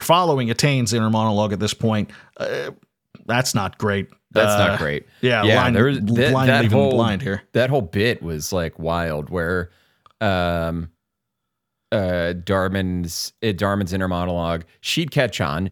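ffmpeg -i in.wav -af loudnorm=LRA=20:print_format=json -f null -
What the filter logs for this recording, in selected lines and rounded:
"input_i" : "-20.6",
"input_tp" : "-1.7",
"input_lra" : "5.8",
"input_thresh" : "-30.8",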